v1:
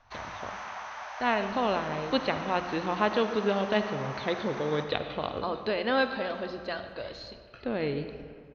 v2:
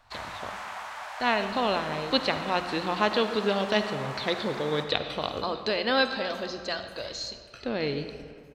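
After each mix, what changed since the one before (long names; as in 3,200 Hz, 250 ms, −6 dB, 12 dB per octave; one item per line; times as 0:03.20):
first sound: remove low-pass with resonance 6,100 Hz, resonance Q 13
master: remove high-frequency loss of the air 290 metres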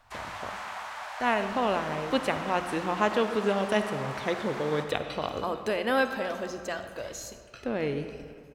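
speech: remove low-pass with resonance 4,300 Hz, resonance Q 6.3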